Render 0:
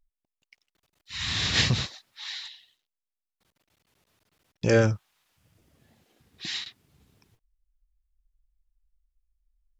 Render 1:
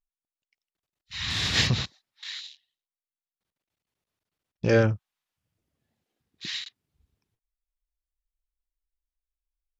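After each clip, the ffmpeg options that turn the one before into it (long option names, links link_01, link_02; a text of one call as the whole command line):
ffmpeg -i in.wav -af "afwtdn=0.00794" out.wav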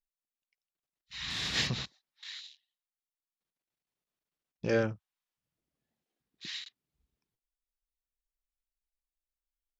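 ffmpeg -i in.wav -af "equalizer=frequency=91:width_type=o:width=0.45:gain=-15,volume=-7dB" out.wav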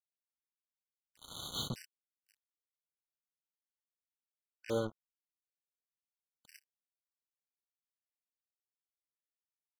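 ffmpeg -i in.wav -af "acrusher=bits=4:mix=0:aa=0.5,afftfilt=real='re*gt(sin(2*PI*0.85*pts/sr)*(1-2*mod(floor(b*sr/1024/1500),2)),0)':imag='im*gt(sin(2*PI*0.85*pts/sr)*(1-2*mod(floor(b*sr/1024/1500),2)),0)':win_size=1024:overlap=0.75,volume=-6dB" out.wav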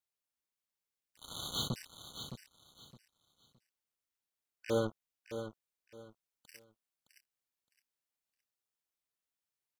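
ffmpeg -i in.wav -af "aecho=1:1:615|1230|1845:0.335|0.0837|0.0209,volume=2.5dB" out.wav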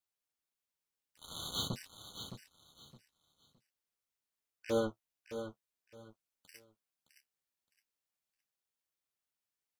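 ffmpeg -i in.wav -af "flanger=delay=9.4:depth=4.7:regen=-35:speed=0.49:shape=triangular,volume=3dB" out.wav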